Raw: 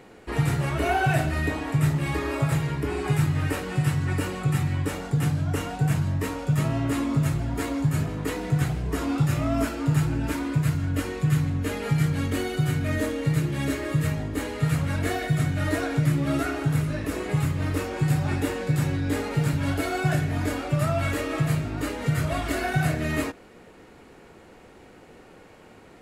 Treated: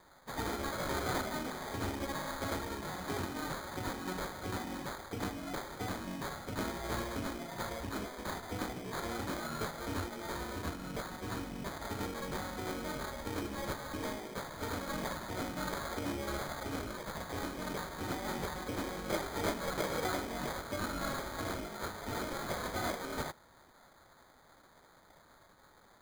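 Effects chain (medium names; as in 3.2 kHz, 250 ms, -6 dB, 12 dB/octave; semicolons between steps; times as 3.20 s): spectral gate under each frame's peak -10 dB weak; 18.88–20.06 s: resonant low-pass 7.7 kHz, resonance Q 9.4; sample-and-hold 16×; trim -5 dB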